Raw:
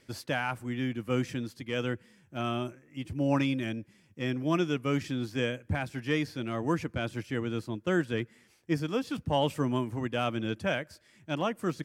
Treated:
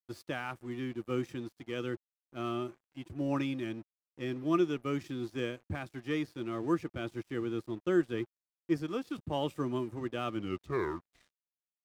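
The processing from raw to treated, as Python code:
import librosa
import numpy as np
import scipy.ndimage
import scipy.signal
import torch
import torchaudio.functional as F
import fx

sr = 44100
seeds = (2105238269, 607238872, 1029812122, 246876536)

y = fx.tape_stop_end(x, sr, length_s=1.56)
y = fx.small_body(y, sr, hz=(350.0, 1200.0, 3700.0), ring_ms=40, db=10)
y = np.sign(y) * np.maximum(np.abs(y) - 10.0 ** (-48.0 / 20.0), 0.0)
y = F.gain(torch.from_numpy(y), -7.0).numpy()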